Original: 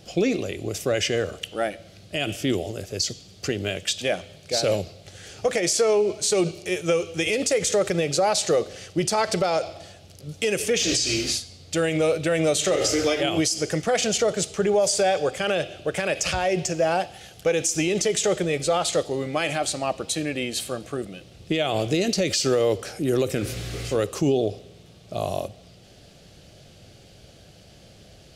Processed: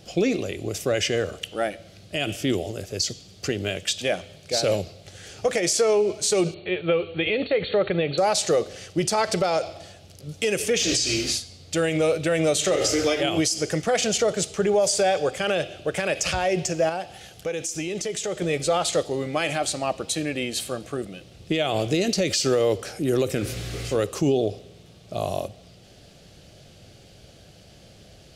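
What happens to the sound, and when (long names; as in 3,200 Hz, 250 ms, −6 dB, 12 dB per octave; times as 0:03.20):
0:06.54–0:08.18: linear-phase brick-wall low-pass 4,500 Hz
0:16.89–0:18.42: downward compressor 1.5 to 1, threshold −36 dBFS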